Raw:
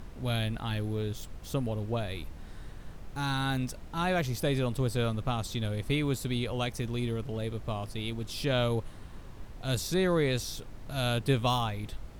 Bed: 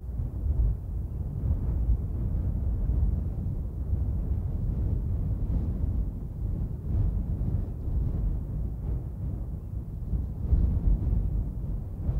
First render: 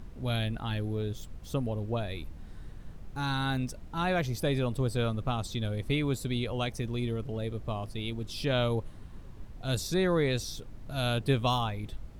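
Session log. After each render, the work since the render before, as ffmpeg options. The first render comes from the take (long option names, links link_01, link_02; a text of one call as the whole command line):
ffmpeg -i in.wav -af "afftdn=noise_reduction=6:noise_floor=-46" out.wav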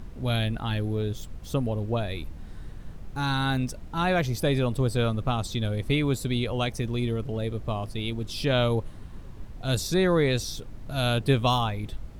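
ffmpeg -i in.wav -af "volume=4.5dB" out.wav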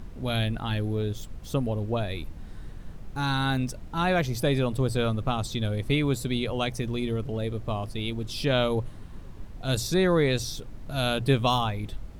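ffmpeg -i in.wav -af "bandreject=frequency=60:width_type=h:width=6,bandreject=frequency=120:width_type=h:width=6" out.wav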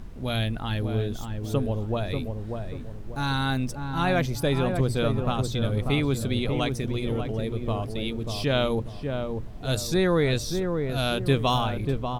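ffmpeg -i in.wav -filter_complex "[0:a]asplit=2[link_01][link_02];[link_02]adelay=590,lowpass=frequency=1000:poles=1,volume=-4.5dB,asplit=2[link_03][link_04];[link_04]adelay=590,lowpass=frequency=1000:poles=1,volume=0.4,asplit=2[link_05][link_06];[link_06]adelay=590,lowpass=frequency=1000:poles=1,volume=0.4,asplit=2[link_07][link_08];[link_08]adelay=590,lowpass=frequency=1000:poles=1,volume=0.4,asplit=2[link_09][link_10];[link_10]adelay=590,lowpass=frequency=1000:poles=1,volume=0.4[link_11];[link_01][link_03][link_05][link_07][link_09][link_11]amix=inputs=6:normalize=0" out.wav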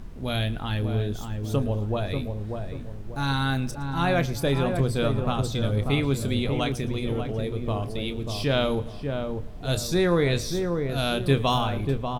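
ffmpeg -i in.wav -filter_complex "[0:a]asplit=2[link_01][link_02];[link_02]adelay=29,volume=-12dB[link_03];[link_01][link_03]amix=inputs=2:normalize=0,aecho=1:1:113|226|339:0.0944|0.0406|0.0175" out.wav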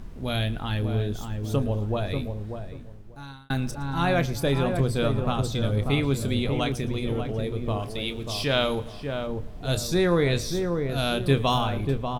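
ffmpeg -i in.wav -filter_complex "[0:a]asettb=1/sr,asplit=3[link_01][link_02][link_03];[link_01]atrim=end=7.794[link_04];[link_02]atrim=start=7.79:end=9.27,asetpts=PTS-STARTPTS,afade=type=in:duration=0.004:curve=qsin,afade=type=out:start_time=1.476:duration=0.004:curve=qsin,tiltshelf=frequency=640:gain=-3.5[link_05];[link_03]atrim=start=9.266[link_06];[link_04][link_05]acrossfade=duration=0.004:curve1=hsin:curve2=qsin[link_07];[link_07][link_06]acrossfade=duration=0.004:curve1=qsin:curve2=hsin,asplit=2[link_08][link_09];[link_08]atrim=end=3.5,asetpts=PTS-STARTPTS,afade=type=out:start_time=2.2:duration=1.3[link_10];[link_09]atrim=start=3.5,asetpts=PTS-STARTPTS,afade=type=in:duration=0.004:curve=hsin[link_11];[link_10][link_11]concat=n=2:v=0:a=1" out.wav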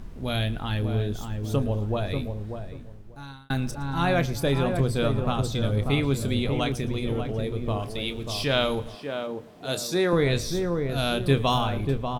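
ffmpeg -i in.wav -filter_complex "[0:a]asettb=1/sr,asplit=3[link_01][link_02][link_03];[link_01]atrim=end=8.954[link_04];[link_02]atrim=start=8.95:end=10.13,asetpts=PTS-STARTPTS,afade=type=in:duration=0.004:curve=qsin,afade=type=out:start_time=1.176:duration=0.004:curve=qsin,highpass=230[link_05];[link_03]atrim=start=10.126[link_06];[link_04][link_05]acrossfade=duration=0.004:curve1=hsin:curve2=qsin[link_07];[link_07][link_06]acrossfade=duration=0.004:curve1=qsin:curve2=hsin" out.wav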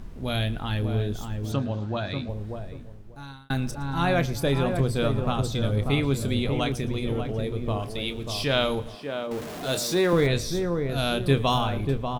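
ffmpeg -i in.wav -filter_complex "[0:a]asettb=1/sr,asplit=3[link_01][link_02][link_03];[link_01]atrim=end=1.524[link_04];[link_02]atrim=start=1.52:end=2.29,asetpts=PTS-STARTPTS,afade=type=in:duration=0.004:curve=qsin,afade=type=out:start_time=0.766:duration=0.004:curve=qsin,highpass=110,equalizer=frequency=450:width_type=q:width=4:gain=-9,equalizer=frequency=1500:width_type=q:width=4:gain=6,equalizer=frequency=4200:width_type=q:width=4:gain=6,lowpass=frequency=7200:width=0.5412,lowpass=frequency=7200:width=1.3066[link_05];[link_03]atrim=start=2.286[link_06];[link_04][link_05]acrossfade=duration=0.004:curve1=hsin:curve2=qsin[link_07];[link_07][link_06]acrossfade=duration=0.004:curve1=qsin:curve2=hsin,asettb=1/sr,asplit=3[link_08][link_09][link_10];[link_08]atrim=end=4.674[link_11];[link_09]atrim=start=4.67:end=5.29,asetpts=PTS-STARTPTS,afade=type=in:duration=0.004:curve=qsin,afade=type=out:start_time=0.616:duration=0.004:curve=qsin,aeval=exprs='sgn(val(0))*max(abs(val(0))-0.00178,0)':channel_layout=same[link_12];[link_10]atrim=start=5.286[link_13];[link_11][link_12]acrossfade=duration=0.004:curve1=hsin:curve2=qsin[link_14];[link_14][link_13]acrossfade=duration=0.004:curve1=qsin:curve2=hsin,asettb=1/sr,asplit=3[link_15][link_16][link_17];[link_15]atrim=end=9.314[link_18];[link_16]atrim=start=9.31:end=10.27,asetpts=PTS-STARTPTS,afade=type=in:duration=0.004:curve=qsin,afade=type=out:start_time=0.956:duration=0.004:curve=qsin,aeval=exprs='val(0)+0.5*0.0251*sgn(val(0))':channel_layout=same[link_19];[link_17]atrim=start=10.266[link_20];[link_18][link_19]acrossfade=duration=0.004:curve1=hsin:curve2=qsin[link_21];[link_21][link_20]acrossfade=duration=0.004:curve1=qsin:curve2=hsin" out.wav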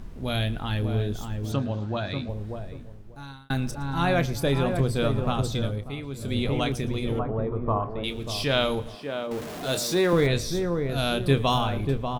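ffmpeg -i in.wav -filter_complex "[0:a]asettb=1/sr,asplit=3[link_01][link_02][link_03];[link_01]atrim=end=7.194[link_04];[link_02]atrim=start=7.19:end=8.04,asetpts=PTS-STARTPTS,afade=type=in:duration=0.004:curve=qsin,afade=type=out:start_time=0.846:duration=0.004:curve=qsin,lowpass=frequency=1100:width_type=q:width=3[link_05];[link_03]atrim=start=8.036[link_06];[link_04][link_05]acrossfade=duration=0.004:curve1=hsin:curve2=qsin[link_07];[link_07][link_06]acrossfade=duration=0.004:curve1=qsin:curve2=hsin,asplit=3[link_08][link_09][link_10];[link_08]atrim=end=5.84,asetpts=PTS-STARTPTS,afade=type=out:start_time=5.57:duration=0.27:silence=0.281838[link_11];[link_09]atrim=start=5.84:end=6.14,asetpts=PTS-STARTPTS,volume=-11dB[link_12];[link_10]atrim=start=6.14,asetpts=PTS-STARTPTS,afade=type=in:duration=0.27:silence=0.281838[link_13];[link_11][link_12][link_13]concat=n=3:v=0:a=1" out.wav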